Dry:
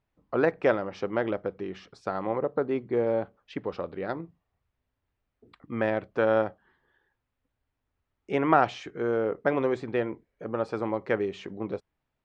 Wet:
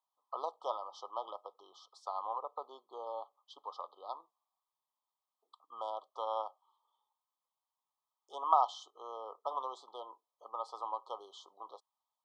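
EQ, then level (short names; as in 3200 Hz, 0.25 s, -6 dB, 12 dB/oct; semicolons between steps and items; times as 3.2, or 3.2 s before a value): ladder high-pass 810 Hz, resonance 50%; brick-wall FIR band-stop 1300–3000 Hz; high shelf 3100 Hz +6 dB; +1.5 dB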